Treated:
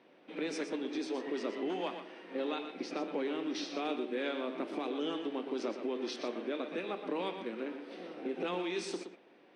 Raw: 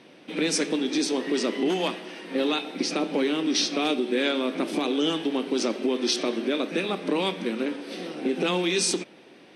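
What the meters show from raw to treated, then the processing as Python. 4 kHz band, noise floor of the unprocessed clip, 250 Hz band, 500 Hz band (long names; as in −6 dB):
−16.0 dB, −51 dBFS, −11.5 dB, −9.5 dB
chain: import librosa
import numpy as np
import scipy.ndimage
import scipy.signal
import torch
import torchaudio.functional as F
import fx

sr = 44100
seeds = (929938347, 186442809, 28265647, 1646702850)

y = fx.bandpass_q(x, sr, hz=780.0, q=0.5)
y = y + 10.0 ** (-9.0 / 20.0) * np.pad(y, (int(120 * sr / 1000.0), 0))[:len(y)]
y = y * librosa.db_to_amplitude(-8.5)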